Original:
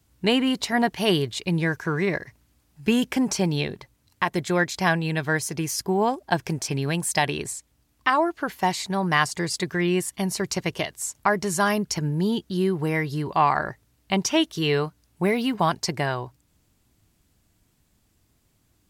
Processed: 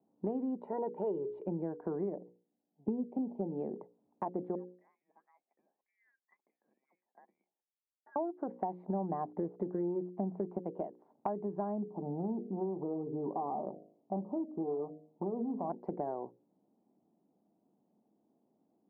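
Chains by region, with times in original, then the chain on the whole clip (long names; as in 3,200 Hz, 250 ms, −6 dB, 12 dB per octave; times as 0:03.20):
0:00.56–0:01.47: comb filter 2.1 ms, depth 75% + one half of a high-frequency compander encoder only
0:02.15–0:03.51: leveller curve on the samples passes 1 + Butterworth band-reject 1,500 Hz, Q 0.93 + expander for the loud parts, over −34 dBFS
0:04.55–0:08.16: downward compressor 2 to 1, threshold −24 dBFS + LFO wah 2 Hz 530–1,100 Hz, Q 16 + voice inversion scrambler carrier 2,700 Hz
0:08.83–0:10.58: running median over 3 samples + high-frequency loss of the air 320 metres + leveller curve on the samples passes 2
0:11.82–0:15.70: gain into a clipping stage and back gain 23.5 dB + linear-phase brick-wall low-pass 1,300 Hz + hum removal 51.61 Hz, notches 14
whole clip: elliptic band-pass filter 200–810 Hz, stop band 80 dB; mains-hum notches 60/120/180/240/300/360/420/480/540 Hz; downward compressor 6 to 1, threshold −33 dBFS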